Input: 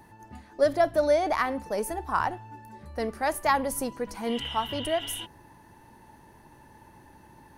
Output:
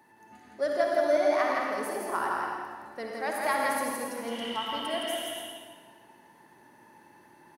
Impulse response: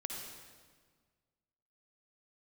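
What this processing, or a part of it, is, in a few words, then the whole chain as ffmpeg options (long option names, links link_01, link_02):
stadium PA: -filter_complex "[0:a]highpass=230,equalizer=frequency=1900:width_type=o:width=1.1:gain=4,aecho=1:1:166.2|277:0.708|0.282[link_01];[1:a]atrim=start_sample=2205[link_02];[link_01][link_02]afir=irnorm=-1:irlink=0,volume=-4.5dB"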